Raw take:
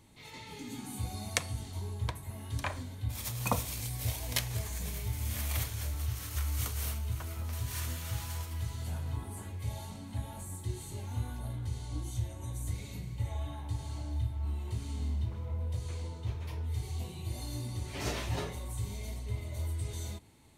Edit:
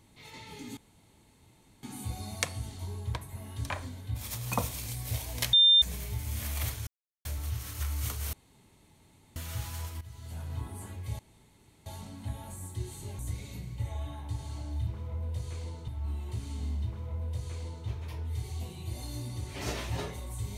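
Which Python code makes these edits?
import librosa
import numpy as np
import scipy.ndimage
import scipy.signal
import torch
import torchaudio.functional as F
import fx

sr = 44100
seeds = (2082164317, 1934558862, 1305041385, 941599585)

y = fx.edit(x, sr, fx.insert_room_tone(at_s=0.77, length_s=1.06),
    fx.bleep(start_s=4.47, length_s=0.29, hz=3600.0, db=-16.5),
    fx.insert_silence(at_s=5.81, length_s=0.38),
    fx.room_tone_fill(start_s=6.89, length_s=1.03),
    fx.fade_in_from(start_s=8.57, length_s=0.58, floor_db=-15.0),
    fx.insert_room_tone(at_s=9.75, length_s=0.67),
    fx.cut(start_s=11.08, length_s=1.51),
    fx.duplicate(start_s=15.25, length_s=1.01, to_s=14.27), tone=tone)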